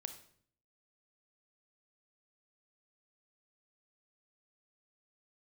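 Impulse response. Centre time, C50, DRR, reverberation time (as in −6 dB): 11 ms, 10.5 dB, 8.0 dB, 0.60 s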